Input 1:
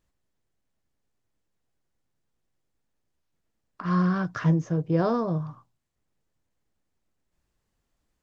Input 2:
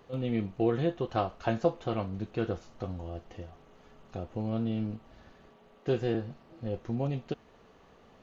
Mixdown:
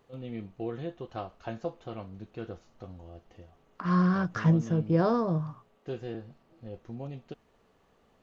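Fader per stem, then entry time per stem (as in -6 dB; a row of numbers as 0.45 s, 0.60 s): -1.0 dB, -8.0 dB; 0.00 s, 0.00 s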